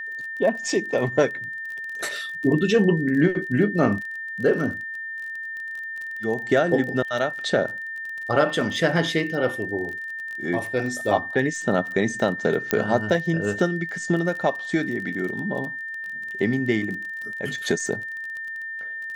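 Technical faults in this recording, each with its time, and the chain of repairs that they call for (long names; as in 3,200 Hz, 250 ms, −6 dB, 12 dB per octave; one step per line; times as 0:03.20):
surface crackle 28 per second −31 dBFS
whistle 1,800 Hz −30 dBFS
0:12.71: click −5 dBFS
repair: click removal
notch filter 1,800 Hz, Q 30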